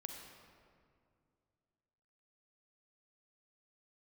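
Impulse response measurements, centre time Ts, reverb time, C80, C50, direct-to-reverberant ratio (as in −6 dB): 67 ms, 2.3 s, 4.0 dB, 3.0 dB, 2.5 dB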